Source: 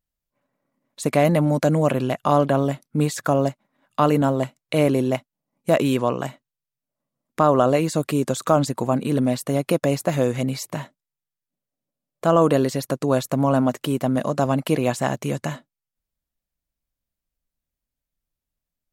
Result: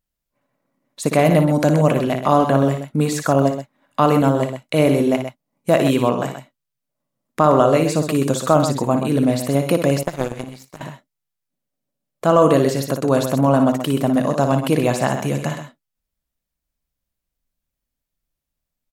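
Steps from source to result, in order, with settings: multi-tap echo 58/128 ms -8/-9 dB; 10.03–10.81 s: power-law waveshaper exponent 2; trim +2.5 dB

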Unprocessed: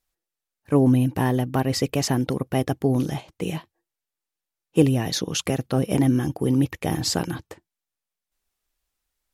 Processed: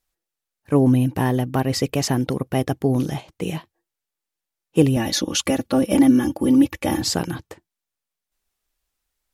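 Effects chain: 4.96–7.02 s: comb 3.5 ms, depth 95%; trim +1.5 dB

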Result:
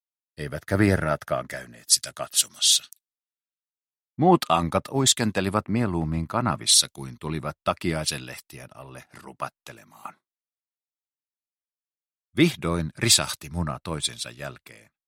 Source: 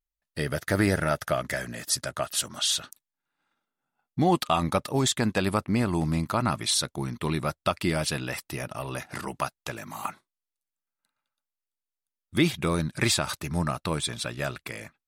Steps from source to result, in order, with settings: three bands expanded up and down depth 100%

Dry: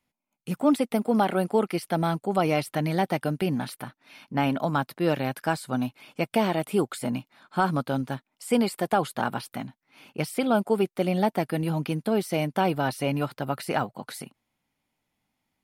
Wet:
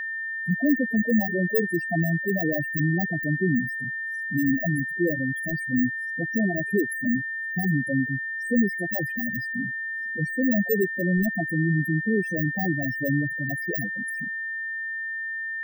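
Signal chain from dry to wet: bit-reversed sample order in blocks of 32 samples; high-pass 86 Hz 6 dB/octave; waveshaping leveller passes 3; loudest bins only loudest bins 4; whistle 1.8 kHz -25 dBFS; trim -3.5 dB

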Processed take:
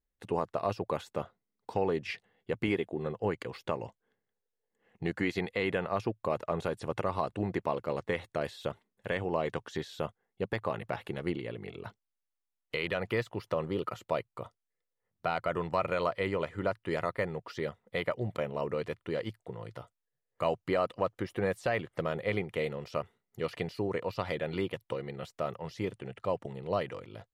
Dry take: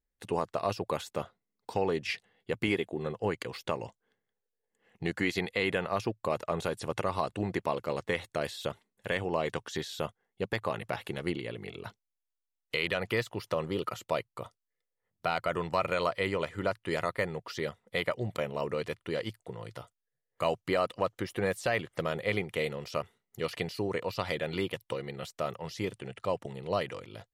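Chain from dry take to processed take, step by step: treble shelf 3 kHz -10 dB

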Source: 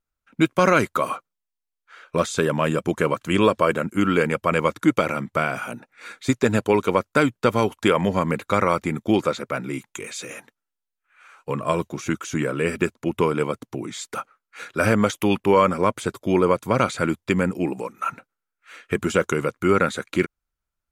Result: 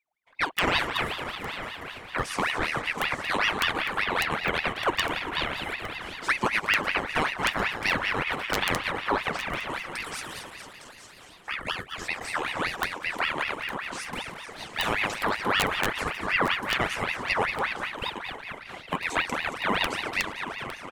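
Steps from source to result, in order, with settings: backward echo that repeats 113 ms, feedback 81%, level -10 dB; 11.62–12.02 s: high-pass 530 Hz; in parallel at -2.5 dB: compression 8:1, threshold -29 dBFS, peak gain reduction 17.5 dB; on the sum: integer overflow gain 4 dB; flange 0.19 Hz, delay 1 ms, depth 7 ms, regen +72%; on a send: delay 858 ms -13 dB; on the sum: ring modulator with a swept carrier 1.5 kHz, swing 60%, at 5.2 Hz; trim -2 dB

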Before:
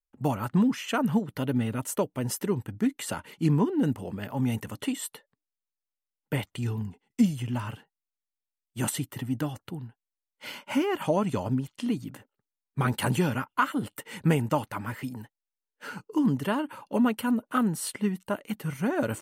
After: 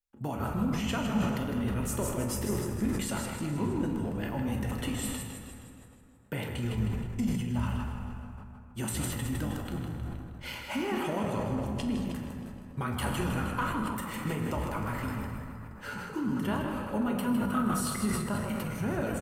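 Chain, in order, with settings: compression 3:1, threshold -31 dBFS, peak gain reduction 11 dB; frequency-shifting echo 157 ms, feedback 54%, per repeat -51 Hz, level -7 dB; reverberation RT60 2.9 s, pre-delay 7 ms, DRR 1 dB; decay stretcher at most 35 dB/s; trim -2 dB

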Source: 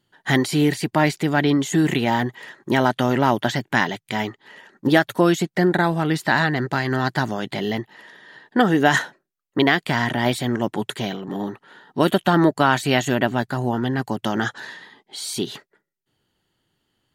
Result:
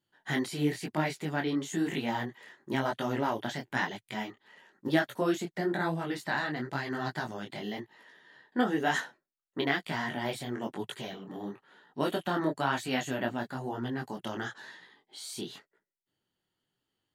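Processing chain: bass shelf 89 Hz -7 dB; detune thickener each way 35 cents; trim -8 dB

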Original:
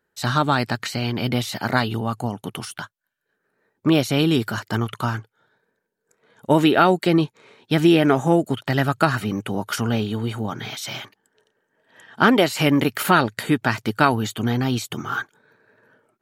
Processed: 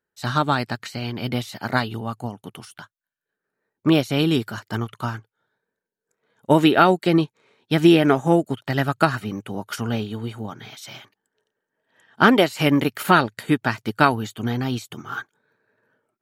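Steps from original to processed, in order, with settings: upward expansion 1.5:1, over -35 dBFS; trim +2 dB

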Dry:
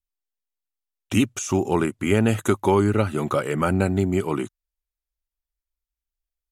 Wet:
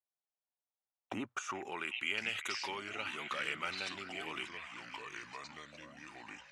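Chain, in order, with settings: repeats whose band climbs or falls 383 ms, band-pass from 1.6 kHz, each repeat 0.7 oct, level -11 dB; in parallel at -2.5 dB: compressor with a negative ratio -26 dBFS, ratio -0.5; on the sum: ever faster or slower copies 772 ms, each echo -4 st, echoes 2, each echo -6 dB; band-pass sweep 750 Hz -> 2.8 kHz, 1.08–1.90 s; trim -4 dB

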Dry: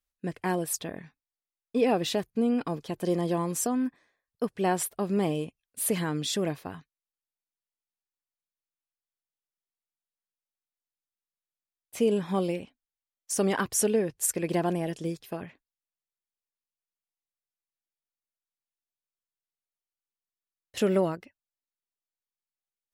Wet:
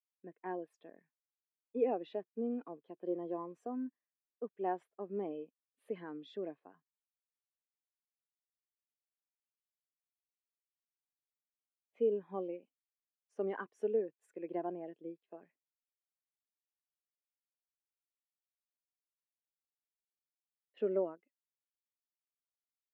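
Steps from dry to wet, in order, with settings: high-pass 150 Hz; three-band isolator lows -15 dB, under 230 Hz, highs -24 dB, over 3.3 kHz; spectral contrast expander 1.5:1; trim -6 dB

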